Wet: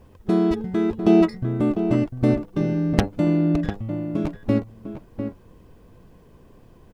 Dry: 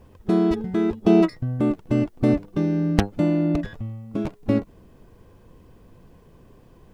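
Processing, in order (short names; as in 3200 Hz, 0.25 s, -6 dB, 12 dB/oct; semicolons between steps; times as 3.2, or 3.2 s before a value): outdoor echo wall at 120 m, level -8 dB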